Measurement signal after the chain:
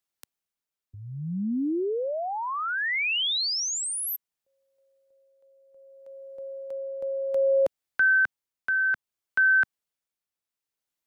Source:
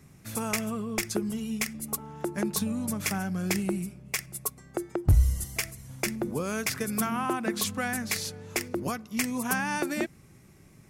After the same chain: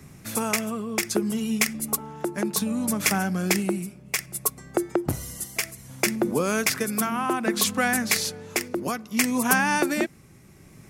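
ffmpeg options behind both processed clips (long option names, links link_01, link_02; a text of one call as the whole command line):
ffmpeg -i in.wav -filter_complex "[0:a]acrossover=split=160[link_01][link_02];[link_01]acompressor=threshold=-55dB:ratio=6[link_03];[link_03][link_02]amix=inputs=2:normalize=0,tremolo=f=0.63:d=0.41,volume=8dB" out.wav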